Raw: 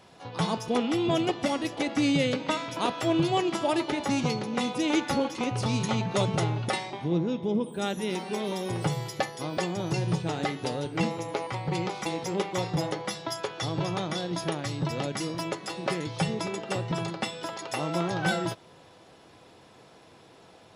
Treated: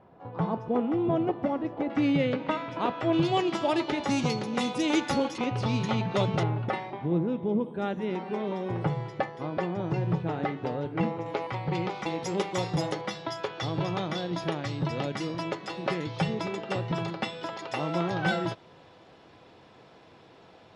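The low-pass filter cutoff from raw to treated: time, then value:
1,100 Hz
from 0:01.90 2,200 Hz
from 0:03.13 5,300 Hz
from 0:04.08 9,200 Hz
from 0:05.38 3,900 Hz
from 0:06.43 1,900 Hz
from 0:11.26 3,500 Hz
from 0:12.23 9,100 Hz
from 0:13.01 4,200 Hz

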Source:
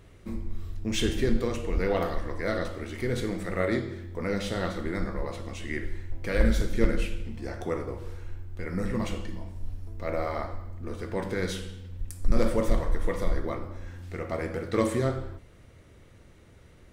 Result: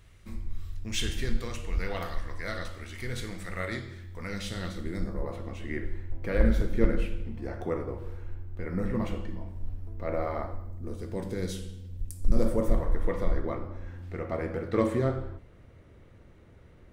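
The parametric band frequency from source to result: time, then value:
parametric band −11.5 dB 2.6 octaves
0:04.19 370 Hz
0:05.03 1,200 Hz
0:05.40 7,100 Hz
0:10.31 7,100 Hz
0:11.05 1,500 Hz
0:12.18 1,500 Hz
0:13.17 9,000 Hz

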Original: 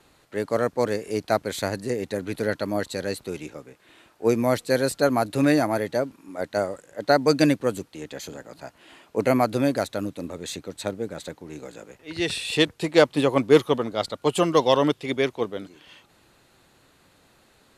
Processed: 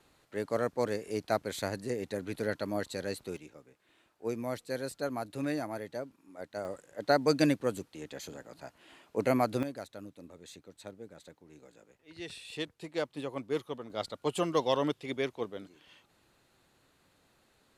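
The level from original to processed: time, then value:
−7.5 dB
from 0:03.37 −14 dB
from 0:06.65 −7 dB
from 0:09.63 −17 dB
from 0:13.90 −9.5 dB

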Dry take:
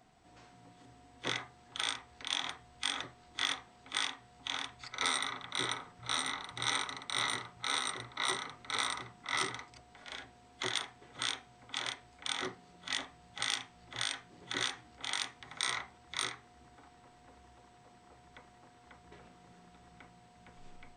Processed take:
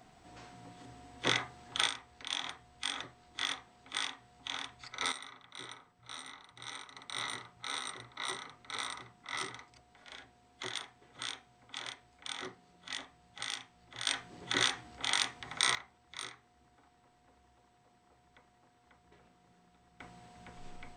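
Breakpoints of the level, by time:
+5.5 dB
from 0:01.87 −2 dB
from 0:05.12 −12 dB
from 0:06.96 −5 dB
from 0:14.07 +5 dB
from 0:15.75 −7.5 dB
from 0:20.00 +4.5 dB

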